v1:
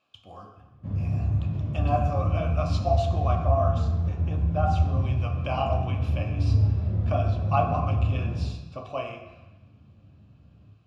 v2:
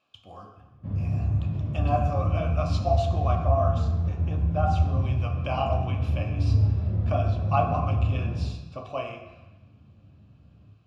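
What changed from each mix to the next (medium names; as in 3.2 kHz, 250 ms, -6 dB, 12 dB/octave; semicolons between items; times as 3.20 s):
background: add distance through air 72 m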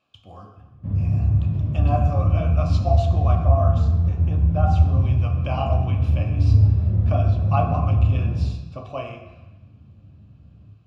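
master: add bass shelf 230 Hz +7.5 dB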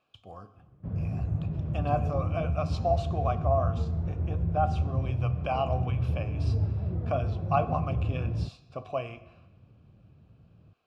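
speech: send -11.0 dB; background: send off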